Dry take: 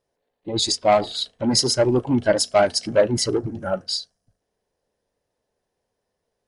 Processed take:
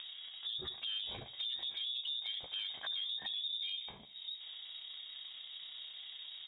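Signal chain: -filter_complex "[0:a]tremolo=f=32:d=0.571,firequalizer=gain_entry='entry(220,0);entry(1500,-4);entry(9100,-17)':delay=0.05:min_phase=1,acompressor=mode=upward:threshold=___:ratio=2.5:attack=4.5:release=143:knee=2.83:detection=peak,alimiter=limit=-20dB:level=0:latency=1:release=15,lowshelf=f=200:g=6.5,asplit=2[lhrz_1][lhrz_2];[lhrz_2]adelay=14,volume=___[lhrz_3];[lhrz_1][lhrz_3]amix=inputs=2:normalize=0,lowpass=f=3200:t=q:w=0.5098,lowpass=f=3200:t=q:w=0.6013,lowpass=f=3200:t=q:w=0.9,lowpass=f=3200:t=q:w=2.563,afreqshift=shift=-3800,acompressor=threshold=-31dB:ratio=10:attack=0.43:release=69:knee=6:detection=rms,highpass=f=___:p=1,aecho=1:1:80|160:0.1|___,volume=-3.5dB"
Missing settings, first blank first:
-21dB, -5.5dB, 49, 0.028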